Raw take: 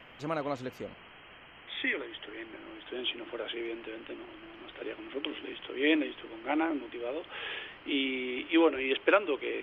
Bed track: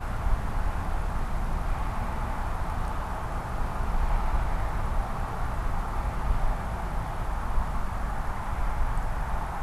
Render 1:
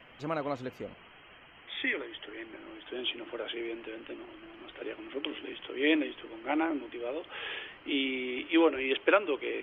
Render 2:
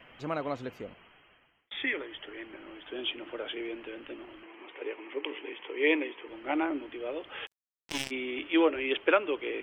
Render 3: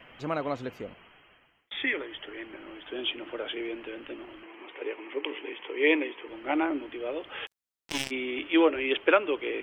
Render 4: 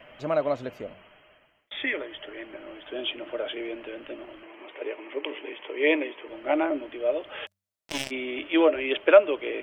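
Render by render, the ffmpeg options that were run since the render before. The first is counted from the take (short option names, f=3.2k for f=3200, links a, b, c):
-af "afftdn=nr=6:nf=-53"
-filter_complex "[0:a]asettb=1/sr,asplit=3[a][b][c];[a]atrim=end=4.434[d];[b]atrim=start=4.43:end=6.28,asetpts=PTS-STARTPTS,afade=t=in:d=0.004:c=qsin,afade=t=out:st=1.846:d=0.004:c=qsin,highpass=320,equalizer=f=440:t=q:w=4:g=6,equalizer=f=630:t=q:w=4:g=-5,equalizer=f=940:t=q:w=4:g=7,equalizer=f=1.4k:t=q:w=4:g=-5,equalizer=f=2.2k:t=q:w=4:g=5,lowpass=f=3.1k:w=0.5412,lowpass=f=3.1k:w=1.3066[e];[c]atrim=start=6.276[f];[d][e]acrossfade=d=0.004:c1=hsin:c2=qsin[g];[g][f]acrossfade=d=0.004:c1=qsin:c2=hsin,asplit=3[h][i][j];[h]afade=t=out:st=7.45:d=0.02[k];[i]acrusher=bits=3:mix=0:aa=0.5,afade=t=in:st=7.45:d=0.02,afade=t=out:st=8.1:d=0.02[l];[j]afade=t=in:st=8.1:d=0.02[m];[k][l][m]amix=inputs=3:normalize=0,asplit=2[n][o];[n]atrim=end=1.71,asetpts=PTS-STARTPTS,afade=t=out:st=0.74:d=0.97[p];[o]atrim=start=1.71,asetpts=PTS-STARTPTS,afade=t=in:d=0.004:c=hsin[q];[p][q]concat=n=2:v=0:a=1"
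-af "volume=2.5dB"
-af "equalizer=f=610:w=7.3:g=13.5,bandreject=f=96.56:t=h:w=4,bandreject=f=193.12:t=h:w=4"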